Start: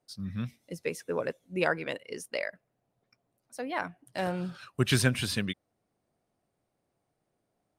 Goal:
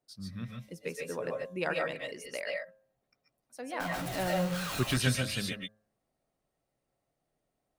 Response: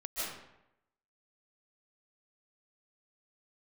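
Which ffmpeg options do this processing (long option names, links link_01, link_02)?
-filter_complex "[0:a]asettb=1/sr,asplit=3[link_01][link_02][link_03];[link_01]atrim=end=3.804[link_04];[link_02]atrim=start=3.8:end=4.84,asetpts=PTS-STARTPTS,afade=type=in:duration=0.004:curve=qsin,afade=type=out:start_time=1.036:duration=0.004:curve=qsin,aeval=exprs='val(0)+0.5*0.0376*sgn(val(0))':channel_layout=same[link_05];[link_03]atrim=start=4.836[link_06];[link_04][link_05]acrossfade=duration=0.004:curve1=hsin:curve2=qsin[link_07];[link_07][link_06]acrossfade=duration=0.004:curve1=qsin:curve2=hsin,bandreject=frequency=106.6:width_type=h:width=4,bandreject=frequency=213.2:width_type=h:width=4,bandreject=frequency=319.8:width_type=h:width=4,bandreject=frequency=426.4:width_type=h:width=4,bandreject=frequency=533:width_type=h:width=4,bandreject=frequency=639.6:width_type=h:width=4,bandreject=frequency=746.2:width_type=h:width=4,bandreject=frequency=852.8:width_type=h:width=4,bandreject=frequency=959.4:width_type=h:width=4,bandreject=frequency=1066:width_type=h:width=4,bandreject=frequency=1172.6:width_type=h:width=4,bandreject=frequency=1279.2:width_type=h:width=4,bandreject=frequency=1385.8:width_type=h:width=4,bandreject=frequency=1492.4:width_type=h:width=4,bandreject=frequency=1599:width_type=h:width=4,bandreject=frequency=1705.6:width_type=h:width=4[link_08];[1:a]atrim=start_sample=2205,atrim=end_sample=6615[link_09];[link_08][link_09]afir=irnorm=-1:irlink=0"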